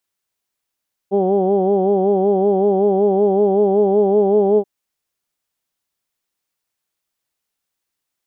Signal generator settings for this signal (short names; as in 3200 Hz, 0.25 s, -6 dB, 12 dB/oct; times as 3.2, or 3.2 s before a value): formant vowel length 3.53 s, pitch 192 Hz, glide +1 st, vibrato depth 0.8 st, F1 440 Hz, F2 770 Hz, F3 3200 Hz